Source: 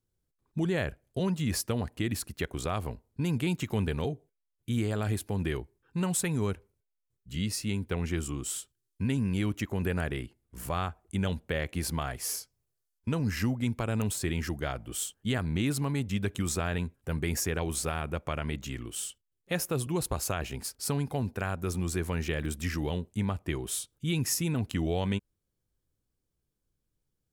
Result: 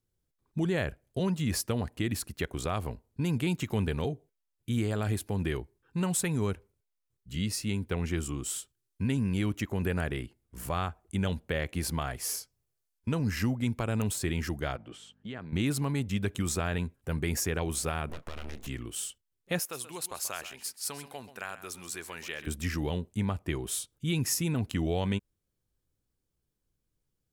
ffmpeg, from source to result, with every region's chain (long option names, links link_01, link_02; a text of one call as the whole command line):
ffmpeg -i in.wav -filter_complex "[0:a]asettb=1/sr,asplit=3[link_01][link_02][link_03];[link_01]atrim=end=14.764[link_04];[link_02]atrim=start=14.76:end=15.53,asetpts=PTS-STARTPTS,afade=type=in:duration=0.004:curve=qsin,afade=type=out:start_time=0.766:duration=0.004:curve=qsin,acompressor=threshold=-37dB:ratio=3:attack=3.2:release=140:knee=1:detection=peak,aeval=exprs='val(0)+0.00112*(sin(2*PI*50*n/s)+sin(2*PI*2*50*n/s)/2+sin(2*PI*3*50*n/s)/3+sin(2*PI*4*50*n/s)/4+sin(2*PI*5*50*n/s)/5)':channel_layout=same,highpass=150,lowpass=3500[link_05];[link_03]atrim=start=15.526[link_06];[link_04][link_05]acrossfade=duration=0.004:curve1=hsin:curve2=qsin[link_07];[link_07][link_06]acrossfade=duration=0.004:curve1=qsin:curve2=hsin,asettb=1/sr,asplit=3[link_08][link_09][link_10];[link_08]atrim=end=18.094[link_11];[link_09]atrim=start=18.09:end=18.67,asetpts=PTS-STARTPTS,afade=type=in:duration=0.004:curve=qsin,afade=type=out:start_time=0.576:duration=0.004:curve=qsin,asplit=2[link_12][link_13];[link_13]adelay=27,volume=-13.5dB[link_14];[link_12][link_14]amix=inputs=2:normalize=0,atrim=end_sample=25578,acompressor=threshold=-36dB:ratio=2.5:attack=3.2:release=140:knee=1:detection=peak,aeval=exprs='abs(val(0))':channel_layout=same[link_15];[link_10]atrim=start=18.666[link_16];[link_11][link_15]acrossfade=duration=0.004:curve1=hsin:curve2=qsin[link_17];[link_17][link_16]acrossfade=duration=0.004:curve1=qsin:curve2=hsin,asettb=1/sr,asplit=3[link_18][link_19][link_20];[link_18]atrim=end=19.594[link_21];[link_19]atrim=start=19.59:end=22.47,asetpts=PTS-STARTPTS,afade=type=in:duration=0.004:curve=qsin,afade=type=out:start_time=2.876:duration=0.004:curve=qsin,highpass=frequency=1400:poles=1,aecho=1:1:132:0.211,atrim=end_sample=127008[link_22];[link_20]atrim=start=22.466[link_23];[link_21][link_22]acrossfade=duration=0.004:curve1=hsin:curve2=qsin[link_24];[link_24][link_23]acrossfade=duration=0.004:curve1=qsin:curve2=hsin" out.wav